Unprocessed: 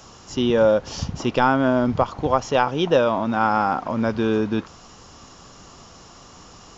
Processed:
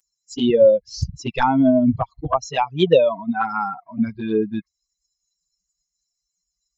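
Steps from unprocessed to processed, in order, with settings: per-bin expansion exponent 3; envelope flanger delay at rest 5.8 ms, full sweep at -20.5 dBFS; gain +9 dB

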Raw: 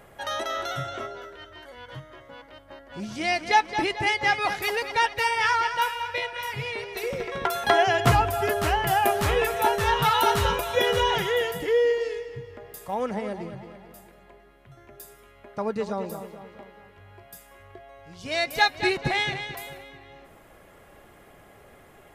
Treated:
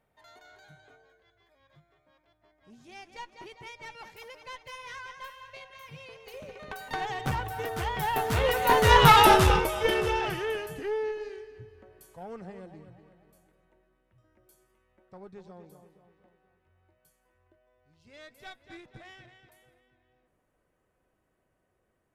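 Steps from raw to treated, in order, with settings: one diode to ground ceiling -22 dBFS; Doppler pass-by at 9.09, 34 m/s, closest 8.6 m; low shelf 390 Hz +4 dB; gain +7.5 dB

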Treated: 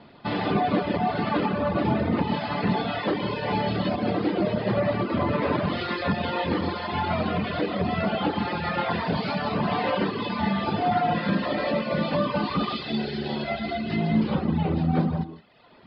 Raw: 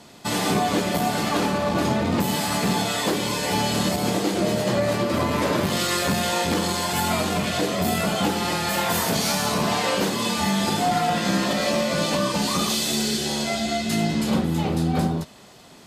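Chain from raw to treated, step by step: non-linear reverb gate 0.19 s rising, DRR 4.5 dB; reverb removal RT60 0.96 s; downsampling 11025 Hz; air absorption 300 m

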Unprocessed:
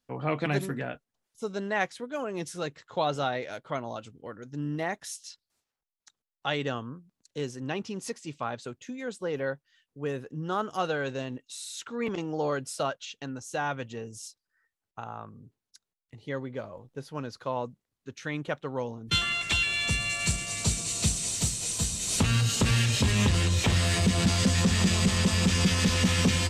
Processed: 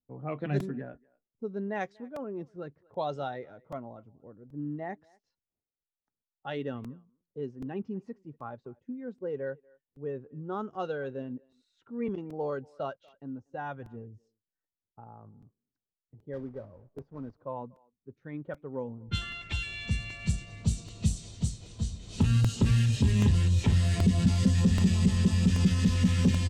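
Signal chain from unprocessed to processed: 16.33–17.41 block floating point 3-bit; spectral noise reduction 7 dB; low-pass opened by the level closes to 730 Hz, open at -21 dBFS; tilt shelf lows +6.5 dB, about 700 Hz; speakerphone echo 0.24 s, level -26 dB; crackling interface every 0.78 s, samples 128, repeat, from 0.6; gain -4.5 dB

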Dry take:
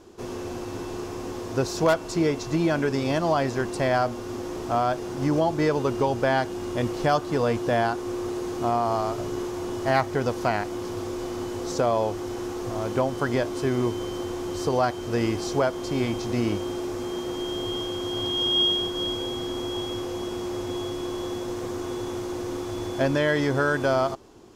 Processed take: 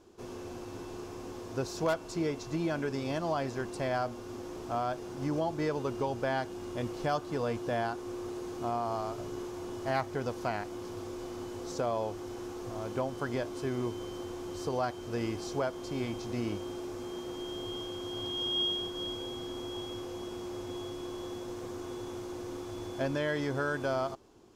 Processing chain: notch 1900 Hz, Q 27; gain -9 dB

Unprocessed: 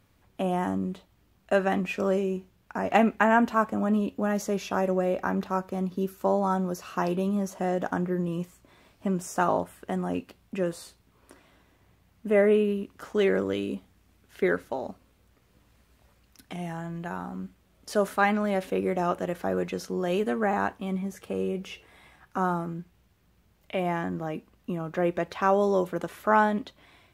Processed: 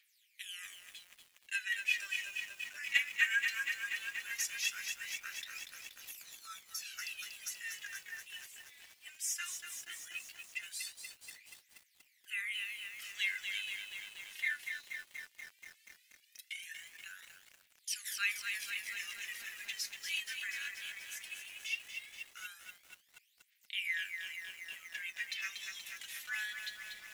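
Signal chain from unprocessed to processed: steep high-pass 1900 Hz 48 dB/oct; phaser 0.17 Hz, delay 3.6 ms, feedback 70%; lo-fi delay 0.239 s, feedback 80%, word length 9-bit, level -6 dB

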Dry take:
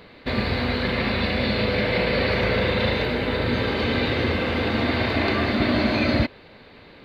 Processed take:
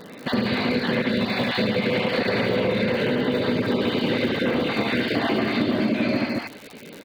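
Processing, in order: random spectral dropouts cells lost 37%; HPF 150 Hz 24 dB/oct; in parallel at -9 dB: soft clip -25.5 dBFS, distortion -9 dB; on the sum: bell 3000 Hz +3 dB 0.29 oct; vibrato 2.6 Hz 15 cents; low shelf 450 Hz +7 dB; loudspeakers at several distances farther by 25 m -4 dB, 73 m -7 dB; on a send at -22 dB: reverb RT60 0.50 s, pre-delay 0.1 s; on the sum: crackle 160/s -30 dBFS; compressor, threshold -19 dBFS, peak gain reduction 9 dB

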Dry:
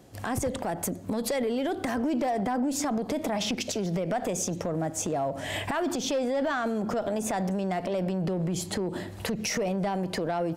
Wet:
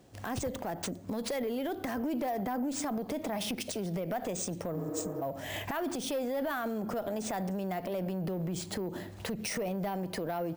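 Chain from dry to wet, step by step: spectral repair 4.79–5.19, 220–6500 Hz before; careless resampling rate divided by 3×, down none, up hold; gain -5.5 dB

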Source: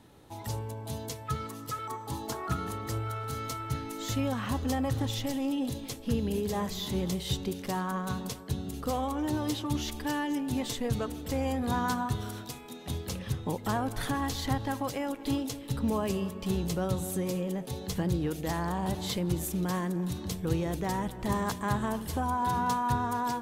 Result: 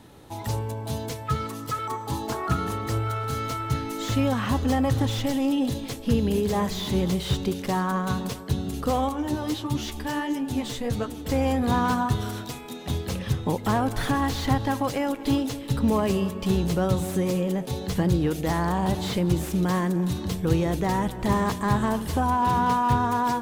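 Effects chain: 9.09–11.26 flange 1.5 Hz, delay 7.2 ms, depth 8.7 ms, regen +41%; slew limiter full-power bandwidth 48 Hz; gain +7 dB

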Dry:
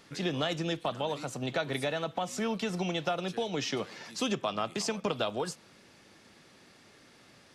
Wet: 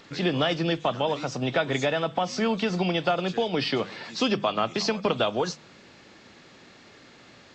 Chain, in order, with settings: nonlinear frequency compression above 3300 Hz 1.5:1; notches 50/100/150/200 Hz; gain +7 dB

